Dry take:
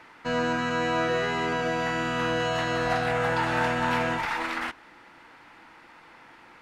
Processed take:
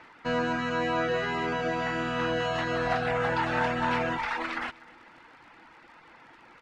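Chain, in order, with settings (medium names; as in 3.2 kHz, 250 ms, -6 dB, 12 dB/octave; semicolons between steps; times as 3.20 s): reverb removal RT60 0.59 s; crackle 55 per s -45 dBFS; distance through air 73 m; feedback delay 249 ms, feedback 43%, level -20.5 dB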